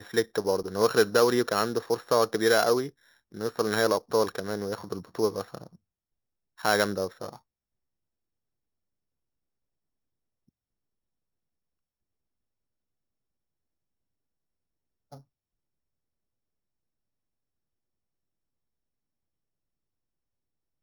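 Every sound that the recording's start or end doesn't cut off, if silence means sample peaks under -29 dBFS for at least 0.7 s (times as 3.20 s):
6.65–7.29 s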